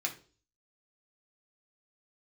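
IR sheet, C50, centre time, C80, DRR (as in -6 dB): 12.5 dB, 11 ms, 18.0 dB, 0.0 dB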